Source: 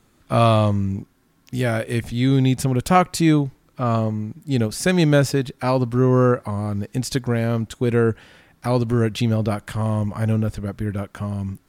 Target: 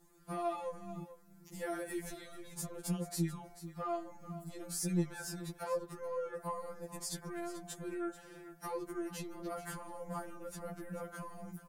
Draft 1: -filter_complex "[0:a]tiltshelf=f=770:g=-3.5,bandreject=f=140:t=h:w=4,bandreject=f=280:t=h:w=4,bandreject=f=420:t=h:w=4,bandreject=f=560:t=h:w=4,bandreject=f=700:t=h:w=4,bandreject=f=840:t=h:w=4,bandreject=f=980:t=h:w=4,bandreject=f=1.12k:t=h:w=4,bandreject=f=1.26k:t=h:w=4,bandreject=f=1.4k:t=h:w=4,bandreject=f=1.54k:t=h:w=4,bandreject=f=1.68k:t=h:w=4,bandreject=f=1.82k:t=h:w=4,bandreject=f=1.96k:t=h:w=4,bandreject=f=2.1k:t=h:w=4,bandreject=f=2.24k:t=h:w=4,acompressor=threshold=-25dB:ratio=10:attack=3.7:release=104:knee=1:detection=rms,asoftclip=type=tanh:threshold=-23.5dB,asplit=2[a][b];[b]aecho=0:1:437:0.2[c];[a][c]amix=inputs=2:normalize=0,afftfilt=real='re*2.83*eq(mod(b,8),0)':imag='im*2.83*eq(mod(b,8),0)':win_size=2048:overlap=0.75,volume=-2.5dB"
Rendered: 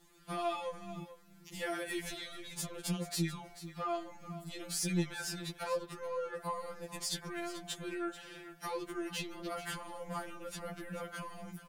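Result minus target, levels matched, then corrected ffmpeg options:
4000 Hz band +7.5 dB
-filter_complex "[0:a]tiltshelf=f=770:g=-3.5,bandreject=f=140:t=h:w=4,bandreject=f=280:t=h:w=4,bandreject=f=420:t=h:w=4,bandreject=f=560:t=h:w=4,bandreject=f=700:t=h:w=4,bandreject=f=840:t=h:w=4,bandreject=f=980:t=h:w=4,bandreject=f=1.12k:t=h:w=4,bandreject=f=1.26k:t=h:w=4,bandreject=f=1.4k:t=h:w=4,bandreject=f=1.54k:t=h:w=4,bandreject=f=1.68k:t=h:w=4,bandreject=f=1.82k:t=h:w=4,bandreject=f=1.96k:t=h:w=4,bandreject=f=2.1k:t=h:w=4,bandreject=f=2.24k:t=h:w=4,acompressor=threshold=-25dB:ratio=10:attack=3.7:release=104:knee=1:detection=rms,equalizer=f=3.1k:t=o:w=1.5:g=-14,asoftclip=type=tanh:threshold=-23.5dB,asplit=2[a][b];[b]aecho=0:1:437:0.2[c];[a][c]amix=inputs=2:normalize=0,afftfilt=real='re*2.83*eq(mod(b,8),0)':imag='im*2.83*eq(mod(b,8),0)':win_size=2048:overlap=0.75,volume=-2.5dB"

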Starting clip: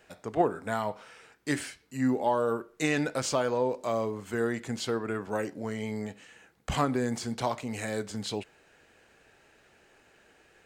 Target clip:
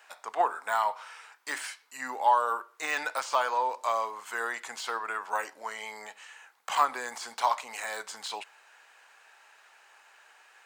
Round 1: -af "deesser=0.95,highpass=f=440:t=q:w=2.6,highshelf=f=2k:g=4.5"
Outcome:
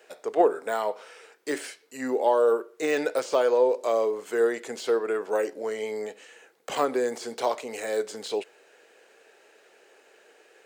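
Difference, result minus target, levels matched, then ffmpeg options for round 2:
500 Hz band +9.5 dB
-af "deesser=0.95,highpass=f=960:t=q:w=2.6,highshelf=f=2k:g=4.5"

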